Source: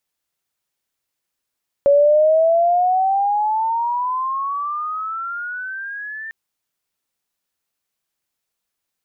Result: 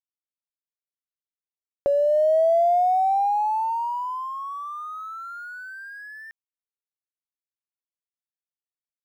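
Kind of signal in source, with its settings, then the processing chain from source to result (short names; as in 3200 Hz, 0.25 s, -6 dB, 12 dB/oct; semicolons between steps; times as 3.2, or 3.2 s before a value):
chirp logarithmic 560 Hz -> 1800 Hz -9 dBFS -> -28 dBFS 4.45 s
dynamic EQ 550 Hz, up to -6 dB, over -29 dBFS, Q 3.1; crossover distortion -47.5 dBFS; upward expander 2.5:1, over -23 dBFS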